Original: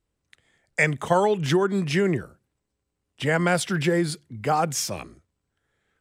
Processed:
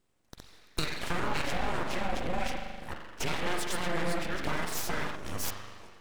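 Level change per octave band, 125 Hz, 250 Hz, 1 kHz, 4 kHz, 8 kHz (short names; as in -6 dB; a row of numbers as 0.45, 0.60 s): -12.0, -11.5, -7.5, -3.5, -7.0 dB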